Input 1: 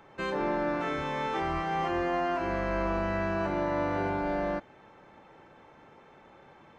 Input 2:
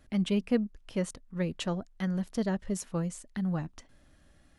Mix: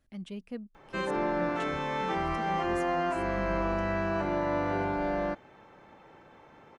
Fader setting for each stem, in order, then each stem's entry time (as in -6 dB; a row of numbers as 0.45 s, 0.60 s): 0.0 dB, -12.5 dB; 0.75 s, 0.00 s